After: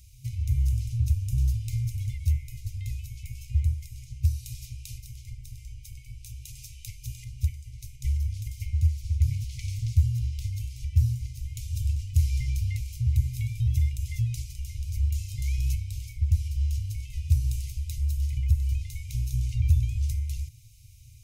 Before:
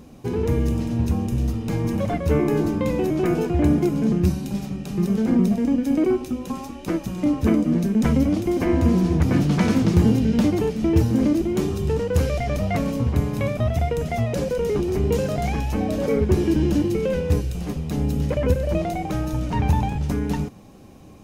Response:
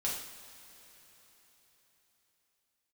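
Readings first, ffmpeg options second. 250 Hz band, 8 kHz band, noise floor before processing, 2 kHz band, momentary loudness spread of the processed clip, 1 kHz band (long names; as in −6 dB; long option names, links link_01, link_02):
below −25 dB, −3.5 dB, −38 dBFS, −15.5 dB, 16 LU, below −40 dB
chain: -filter_complex "[0:a]acrossover=split=120[link_01][link_02];[link_02]acompressor=threshold=-27dB:ratio=5[link_03];[link_01][link_03]amix=inputs=2:normalize=0,afftfilt=real='re*(1-between(b*sr/4096,130,2000))':imag='im*(1-between(b*sr/4096,130,2000))':win_size=4096:overlap=0.75,bass=frequency=250:gain=9,treble=frequency=4000:gain=12,volume=-8.5dB"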